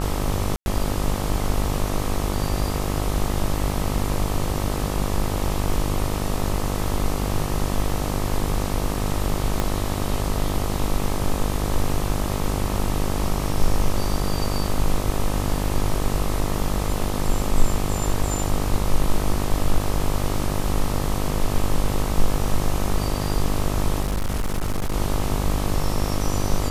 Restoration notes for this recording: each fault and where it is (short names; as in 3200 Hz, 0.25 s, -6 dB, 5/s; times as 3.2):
buzz 50 Hz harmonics 26 -26 dBFS
0.56–0.66 gap 0.101 s
9.6 pop -8 dBFS
24.02–24.94 clipped -19.5 dBFS